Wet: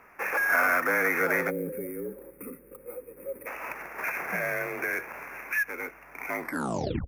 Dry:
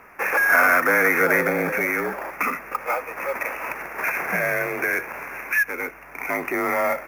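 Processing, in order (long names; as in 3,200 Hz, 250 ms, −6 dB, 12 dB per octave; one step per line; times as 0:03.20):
turntable brake at the end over 0.67 s
gain on a spectral selection 0:01.50–0:03.47, 580–8,000 Hz −24 dB
level −7 dB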